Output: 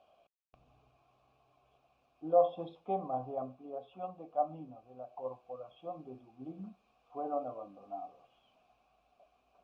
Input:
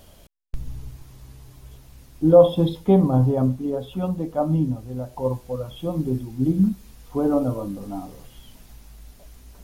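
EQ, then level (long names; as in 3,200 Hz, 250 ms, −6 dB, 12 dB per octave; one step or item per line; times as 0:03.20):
formant filter a
high-frequency loss of the air 54 metres
−2.0 dB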